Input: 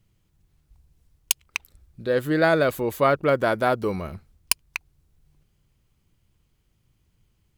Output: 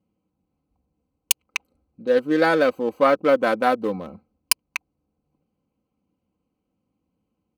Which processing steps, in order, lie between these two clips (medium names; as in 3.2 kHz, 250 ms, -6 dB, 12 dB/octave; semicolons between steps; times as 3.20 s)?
local Wiener filter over 25 samples; high-pass 190 Hz 12 dB/octave; comb 3.9 ms, depth 68%; trim +1 dB